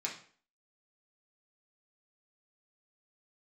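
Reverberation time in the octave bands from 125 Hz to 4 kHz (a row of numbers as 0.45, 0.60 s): 0.40, 0.50, 0.50, 0.45, 0.45, 0.40 s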